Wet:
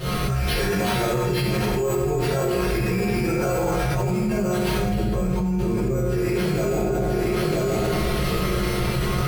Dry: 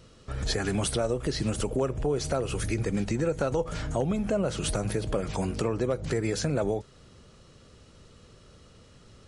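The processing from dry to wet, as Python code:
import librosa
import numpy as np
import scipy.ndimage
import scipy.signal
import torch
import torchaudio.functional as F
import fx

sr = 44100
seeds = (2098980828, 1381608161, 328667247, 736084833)

y = fx.rattle_buzz(x, sr, strikes_db=-28.0, level_db=-29.0)
y = fx.chorus_voices(y, sr, voices=6, hz=0.34, base_ms=19, depth_ms=4.2, mix_pct=50)
y = fx.comb_fb(y, sr, f0_hz=180.0, decay_s=0.57, harmonics='all', damping=0.0, mix_pct=90)
y = np.repeat(y[::6], 6)[:len(y)]
y = fx.low_shelf(y, sr, hz=350.0, db=11.5, at=(4.79, 6.03))
y = y + 10.0 ** (-18.5 / 20.0) * np.pad(y, (int(976 * sr / 1000.0), 0))[:len(y)]
y = fx.rev_fdn(y, sr, rt60_s=1.5, lf_ratio=1.0, hf_ratio=0.55, size_ms=44.0, drr_db=-9.5)
y = fx.env_flatten(y, sr, amount_pct=100)
y = F.gain(torch.from_numpy(y), -1.5).numpy()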